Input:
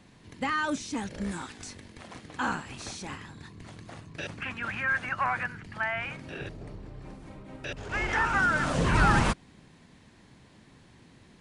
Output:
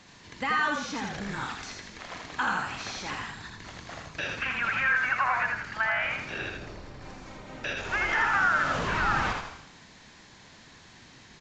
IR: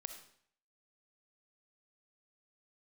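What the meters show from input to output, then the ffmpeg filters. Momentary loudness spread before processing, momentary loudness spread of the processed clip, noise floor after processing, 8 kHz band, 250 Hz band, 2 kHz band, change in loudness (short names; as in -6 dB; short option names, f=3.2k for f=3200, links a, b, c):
22 LU, 19 LU, -53 dBFS, -1.5 dB, -5.0 dB, +3.5 dB, +1.5 dB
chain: -filter_complex "[0:a]asplit=2[a][b];[1:a]atrim=start_sample=2205[c];[b][c]afir=irnorm=-1:irlink=0,volume=-1dB[d];[a][d]amix=inputs=2:normalize=0,acompressor=threshold=-28dB:ratio=2.5,equalizer=f=2.8k:w=1.1:g=-4,acrossover=split=3900[e][f];[f]acompressor=threshold=-57dB:ratio=4:attack=1:release=60[g];[e][g]amix=inputs=2:normalize=0,tiltshelf=f=780:g=-7.5,asplit=6[h][i][j][k][l][m];[i]adelay=82,afreqshift=-40,volume=-3.5dB[n];[j]adelay=164,afreqshift=-80,volume=-11.5dB[o];[k]adelay=246,afreqshift=-120,volume=-19.4dB[p];[l]adelay=328,afreqshift=-160,volume=-27.4dB[q];[m]adelay=410,afreqshift=-200,volume=-35.3dB[r];[h][n][o][p][q][r]amix=inputs=6:normalize=0,aresample=16000,aresample=44100"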